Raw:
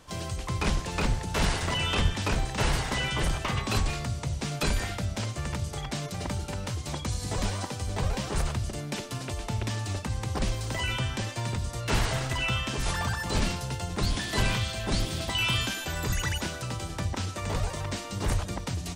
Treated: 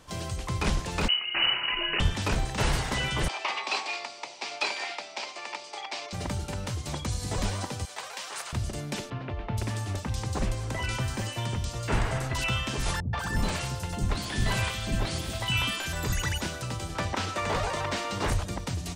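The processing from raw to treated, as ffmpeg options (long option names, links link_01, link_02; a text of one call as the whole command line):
ffmpeg -i in.wav -filter_complex "[0:a]asettb=1/sr,asplit=3[link_01][link_02][link_03];[link_01]atrim=end=1.084[link_04];[link_02]atrim=start=1.08:end=2,asetpts=PTS-STARTPTS,afade=type=in:duration=0.004:curve=qsin,afade=type=out:start_time=0.916:duration=0.004:curve=qsin,lowpass=frequency=2600:width_type=q:width=0.5098,lowpass=frequency=2600:width_type=q:width=0.6013,lowpass=frequency=2600:width_type=q:width=0.9,lowpass=frequency=2600:width_type=q:width=2.563,afreqshift=-3000[link_05];[link_03]atrim=start=1.996[link_06];[link_04][link_05]acrossfade=duration=0.004:curve1=hsin:curve2=qsin[link_07];[link_07][link_06]acrossfade=duration=0.004:curve1=qsin:curve2=hsin,asettb=1/sr,asplit=3[link_08][link_09][link_10];[link_08]atrim=end=3.284[link_11];[link_09]atrim=start=3.28:end=6.13,asetpts=PTS-STARTPTS,afade=type=in:duration=0.004:curve=qsin,afade=type=out:start_time=2.846:duration=0.004:curve=qsin,highpass=frequency=410:width=0.5412,highpass=frequency=410:width=1.3066,equalizer=frequency=480:width_type=q:width=4:gain=-8,equalizer=frequency=860:width_type=q:width=4:gain=6,equalizer=frequency=1500:width_type=q:width=4:gain=-5,equalizer=frequency=2400:width_type=q:width=4:gain=7,equalizer=frequency=4700:width_type=q:width=4:gain=4,equalizer=frequency=6700:width_type=q:width=4:gain=-4,lowpass=frequency=7000:width=0.5412,lowpass=frequency=7000:width=1.3066[link_12];[link_10]atrim=start=6.126[link_13];[link_11][link_12]acrossfade=duration=0.004:curve1=hsin:curve2=qsin[link_14];[link_14][link_13]acrossfade=duration=0.004:curve1=qsin:curve2=hsin,asettb=1/sr,asplit=3[link_15][link_16][link_17];[link_15]atrim=end=7.854[link_18];[link_16]atrim=start=7.85:end=8.53,asetpts=PTS-STARTPTS,afade=type=in:duration=0.004:curve=qsin,afade=type=out:start_time=0.676:duration=0.004:curve=qsin,highpass=960[link_19];[link_17]atrim=start=8.526[link_20];[link_18][link_19]acrossfade=duration=0.004:curve1=hsin:curve2=qsin[link_21];[link_21][link_20]acrossfade=duration=0.004:curve1=qsin:curve2=hsin,asettb=1/sr,asplit=3[link_22][link_23][link_24];[link_22]atrim=end=9.104[link_25];[link_23]atrim=start=9.1:end=12.44,asetpts=PTS-STARTPTS,afade=type=in:duration=0.004:curve=qsin,afade=type=out:start_time=3.336:duration=0.004:curve=qsin,acrossover=split=3000[link_26][link_27];[link_27]adelay=470[link_28];[link_26][link_28]amix=inputs=2:normalize=0,atrim=end_sample=147294[link_29];[link_24]atrim=start=12.436[link_30];[link_25][link_29]acrossfade=duration=0.004:curve1=hsin:curve2=qsin[link_31];[link_31][link_30]acrossfade=duration=0.004:curve1=qsin:curve2=hsin,asettb=1/sr,asplit=3[link_32][link_33][link_34];[link_32]atrim=end=13.004[link_35];[link_33]atrim=start=13:end=15.93,asetpts=PTS-STARTPTS,afade=type=in:duration=0.004:curve=qsin,afade=type=out:start_time=2.926:duration=0.004:curve=qsin,acrossover=split=370|4600[link_36][link_37][link_38];[link_37]adelay=130[link_39];[link_38]adelay=190[link_40];[link_36][link_39][link_40]amix=inputs=3:normalize=0,atrim=end_sample=129213[link_41];[link_34]atrim=start=15.926[link_42];[link_35][link_41]acrossfade=duration=0.004:curve1=hsin:curve2=qsin[link_43];[link_43][link_42]acrossfade=duration=0.004:curve1=qsin:curve2=hsin,asettb=1/sr,asplit=3[link_44][link_45][link_46];[link_44]atrim=end=16.954[link_47];[link_45]atrim=start=16.95:end=18.3,asetpts=PTS-STARTPTS,afade=type=in:duration=0.004:curve=qsin,afade=type=out:start_time=1.346:duration=0.004:curve=qsin,asplit=2[link_48][link_49];[link_49]highpass=frequency=720:poles=1,volume=16dB,asoftclip=type=tanh:threshold=-16dB[link_50];[link_48][link_50]amix=inputs=2:normalize=0,lowpass=frequency=2300:poles=1,volume=-6dB[link_51];[link_46]atrim=start=18.296[link_52];[link_47][link_51]acrossfade=duration=0.004:curve1=hsin:curve2=qsin[link_53];[link_53][link_52]acrossfade=duration=0.004:curve1=qsin:curve2=hsin" out.wav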